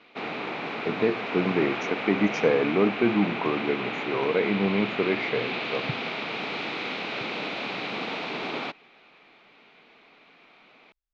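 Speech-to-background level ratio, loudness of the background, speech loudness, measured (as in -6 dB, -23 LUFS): 4.5 dB, -31.0 LUFS, -26.5 LUFS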